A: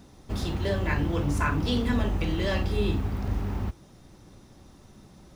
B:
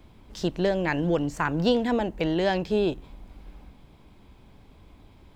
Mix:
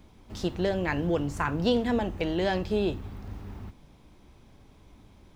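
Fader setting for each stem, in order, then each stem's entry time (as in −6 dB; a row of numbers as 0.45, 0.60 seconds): −10.5, −3.0 decibels; 0.00, 0.00 seconds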